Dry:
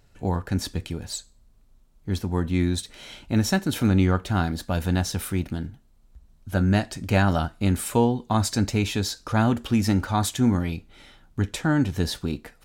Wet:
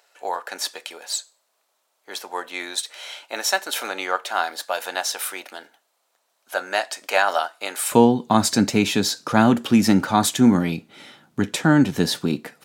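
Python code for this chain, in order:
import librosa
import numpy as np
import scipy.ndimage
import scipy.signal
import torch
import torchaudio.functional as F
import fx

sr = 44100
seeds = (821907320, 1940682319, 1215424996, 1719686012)

y = fx.highpass(x, sr, hz=fx.steps((0.0, 560.0), (7.92, 150.0)), slope=24)
y = y * 10.0 ** (6.5 / 20.0)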